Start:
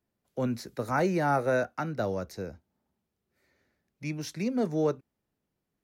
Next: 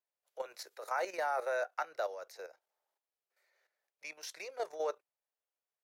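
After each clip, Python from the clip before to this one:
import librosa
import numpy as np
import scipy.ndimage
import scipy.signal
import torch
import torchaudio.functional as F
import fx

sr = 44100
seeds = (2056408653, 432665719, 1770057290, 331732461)

y = scipy.signal.sosfilt(scipy.signal.cheby2(4, 40, 260.0, 'highpass', fs=sr, output='sos'), x)
y = fx.level_steps(y, sr, step_db=11)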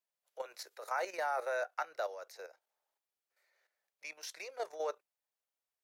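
y = fx.low_shelf(x, sr, hz=340.0, db=-6.0)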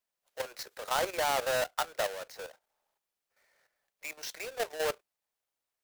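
y = fx.halfwave_hold(x, sr)
y = y * librosa.db_to_amplitude(2.0)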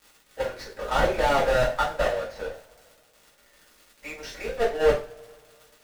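y = fx.riaa(x, sr, side='playback')
y = fx.dmg_crackle(y, sr, seeds[0], per_s=130.0, level_db=-44.0)
y = fx.rev_double_slope(y, sr, seeds[1], early_s=0.34, late_s=2.4, knee_db=-27, drr_db=-7.5)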